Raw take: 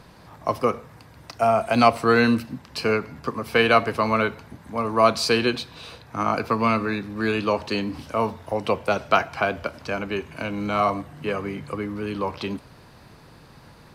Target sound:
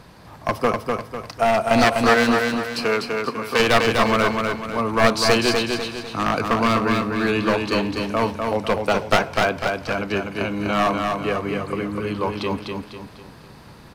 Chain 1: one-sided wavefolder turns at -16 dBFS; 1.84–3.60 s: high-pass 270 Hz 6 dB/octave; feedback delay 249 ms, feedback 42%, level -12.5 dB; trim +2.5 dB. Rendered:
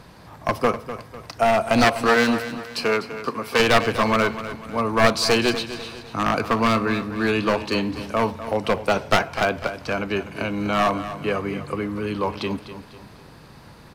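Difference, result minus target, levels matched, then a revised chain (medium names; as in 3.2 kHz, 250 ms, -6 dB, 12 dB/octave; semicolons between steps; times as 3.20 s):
echo-to-direct -8.5 dB
one-sided wavefolder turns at -16 dBFS; 1.84–3.60 s: high-pass 270 Hz 6 dB/octave; feedback delay 249 ms, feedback 42%, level -4 dB; trim +2.5 dB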